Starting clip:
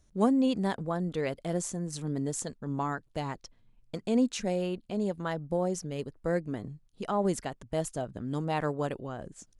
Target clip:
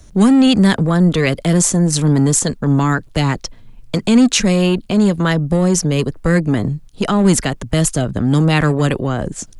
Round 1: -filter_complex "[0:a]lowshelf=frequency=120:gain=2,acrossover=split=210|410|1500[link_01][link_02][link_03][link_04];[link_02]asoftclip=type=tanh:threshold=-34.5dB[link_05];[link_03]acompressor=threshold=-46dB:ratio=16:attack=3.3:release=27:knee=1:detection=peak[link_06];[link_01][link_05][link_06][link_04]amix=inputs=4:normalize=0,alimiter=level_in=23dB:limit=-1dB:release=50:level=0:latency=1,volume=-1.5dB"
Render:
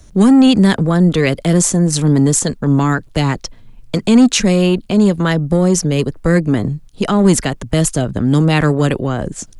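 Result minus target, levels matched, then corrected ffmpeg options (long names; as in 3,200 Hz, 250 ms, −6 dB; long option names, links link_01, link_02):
soft clipping: distortion −4 dB
-filter_complex "[0:a]lowshelf=frequency=120:gain=2,acrossover=split=210|410|1500[link_01][link_02][link_03][link_04];[link_02]asoftclip=type=tanh:threshold=-41.5dB[link_05];[link_03]acompressor=threshold=-46dB:ratio=16:attack=3.3:release=27:knee=1:detection=peak[link_06];[link_01][link_05][link_06][link_04]amix=inputs=4:normalize=0,alimiter=level_in=23dB:limit=-1dB:release=50:level=0:latency=1,volume=-1.5dB"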